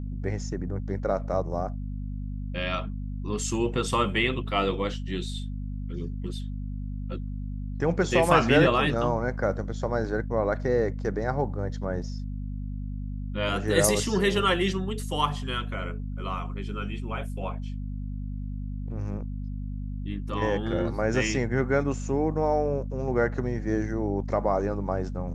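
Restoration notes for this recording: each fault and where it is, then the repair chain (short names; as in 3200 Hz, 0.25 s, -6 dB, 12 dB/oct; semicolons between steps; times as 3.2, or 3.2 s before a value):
hum 50 Hz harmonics 5 -33 dBFS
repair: de-hum 50 Hz, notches 5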